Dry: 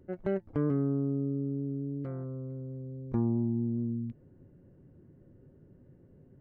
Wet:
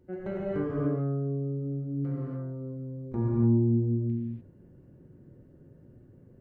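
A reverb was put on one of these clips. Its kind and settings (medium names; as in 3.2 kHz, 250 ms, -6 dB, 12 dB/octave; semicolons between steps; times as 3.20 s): gated-style reverb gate 320 ms flat, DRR -6.5 dB; trim -4 dB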